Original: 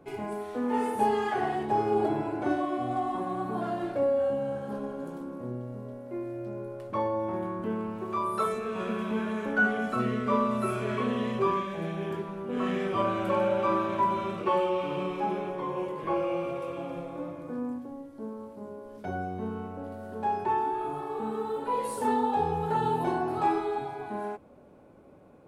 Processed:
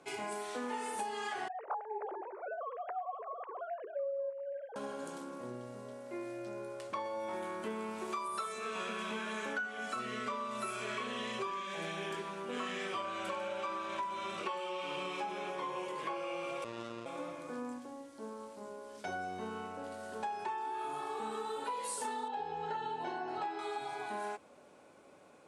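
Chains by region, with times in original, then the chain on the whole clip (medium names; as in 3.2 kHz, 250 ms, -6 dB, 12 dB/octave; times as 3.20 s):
1.48–4.76 s: formants replaced by sine waves + low-pass 1.2 kHz + hum notches 60/120/180/240/300/360/420 Hz
7.04–8.28 s: treble shelf 10 kHz +9.5 dB + doubling 14 ms -6.5 dB
16.64–17.06 s: robot voice 116 Hz + distance through air 140 m + sliding maximum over 33 samples
22.28–23.59 s: distance through air 140 m + comb of notches 1.2 kHz
whole clip: low-pass 8.7 kHz 24 dB/octave; tilt EQ +4.5 dB/octave; compression 16:1, threshold -35 dBFS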